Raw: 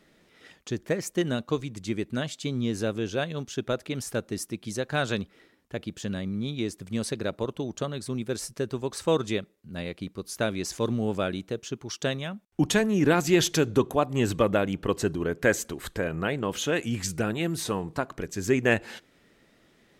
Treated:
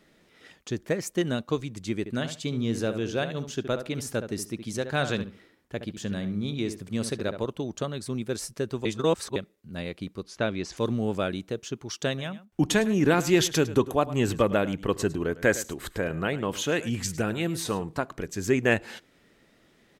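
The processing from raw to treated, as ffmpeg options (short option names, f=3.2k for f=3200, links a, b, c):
-filter_complex "[0:a]asettb=1/sr,asplit=3[a][b][c];[a]atrim=end=1.994[d];[b]atrim=start=1.99:end=7.41,asetpts=PTS-STARTPTS,afade=t=in:d=0.004:c=qsin,afade=t=out:st=5.416:d=0.004:c=qsin,asplit=2[e][f];[f]adelay=69,lowpass=f=2.2k:p=1,volume=-9dB,asplit=2[g][h];[h]adelay=69,lowpass=f=2.2k:p=1,volume=0.23,asplit=2[i][j];[j]adelay=69,lowpass=f=2.2k:p=1,volume=0.23[k];[e][g][i][k]amix=inputs=4:normalize=0,atrim=end_sample=239022[l];[c]atrim=start=7.406[m];[d][l]acrossfade=d=0.004:c1=hsin:c2=qsin[n];[n][m]acrossfade=d=0.004:c1=qsin:c2=hsin,asettb=1/sr,asplit=3[o][p][q];[o]atrim=end=10.234[r];[p]atrim=start=10.23:end=10.77,asetpts=PTS-STARTPTS,afade=t=in:d=0.004:c=qsin,afade=t=out:st=0.536:d=0.004:c=qsin,lowpass=4.4k[s];[q]atrim=start=10.766[t];[r][s]acrossfade=d=0.004:c1=hsin:c2=qsin[u];[u][t]acrossfade=d=0.004:c1=qsin:c2=hsin,asplit=3[v][w][x];[v]afade=t=out:st=12.17:d=0.02[y];[w]aecho=1:1:105:0.15,afade=t=in:st=12.17:d=0.02,afade=t=out:st=17.83:d=0.02[z];[x]afade=t=in:st=17.83:d=0.02[aa];[y][z][aa]amix=inputs=3:normalize=0,asplit=3[ab][ac][ad];[ab]atrim=end=8.852[ae];[ac]atrim=start=8.848:end=9.362,asetpts=PTS-STARTPTS,areverse[af];[ad]atrim=start=9.358[ag];[ae][af]acrossfade=d=0.004:c1=hsin:c2=hsin[ah];[ah][ag]acrossfade=d=0.004:c1=hsin:c2=hsin"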